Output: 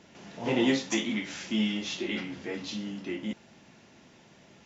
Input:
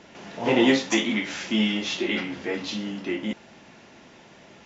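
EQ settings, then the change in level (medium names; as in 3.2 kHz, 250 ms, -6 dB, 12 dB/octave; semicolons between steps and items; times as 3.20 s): peaking EQ 120 Hz +6.5 dB 2.5 oct; treble shelf 4.5 kHz +7.5 dB; -9.0 dB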